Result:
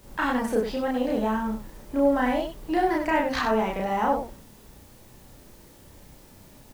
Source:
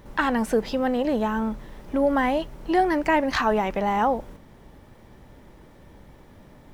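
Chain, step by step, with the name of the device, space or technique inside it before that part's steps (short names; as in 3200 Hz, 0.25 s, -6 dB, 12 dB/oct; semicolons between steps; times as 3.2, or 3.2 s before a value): plain cassette with noise reduction switched in (mismatched tape noise reduction decoder only; wow and flutter; white noise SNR 29 dB); loudspeakers at several distances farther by 11 m 0 dB, 33 m -6 dB; gain -5.5 dB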